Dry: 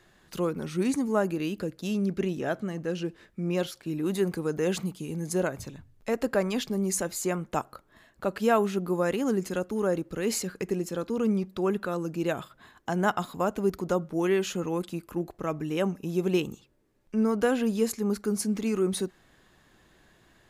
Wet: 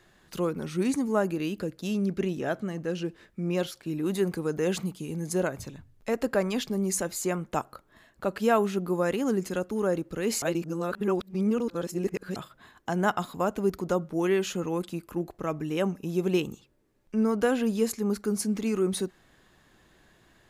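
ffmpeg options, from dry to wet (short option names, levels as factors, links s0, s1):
-filter_complex "[0:a]asplit=3[s0][s1][s2];[s0]atrim=end=10.422[s3];[s1]atrim=start=10.418:end=12.362,asetpts=PTS-STARTPTS,areverse[s4];[s2]atrim=start=12.358[s5];[s3][s4]acrossfade=d=0.004:c1=hsin:c2=hsin[s6];[s6][s5]acrossfade=d=0.004:c1=hsin:c2=hsin"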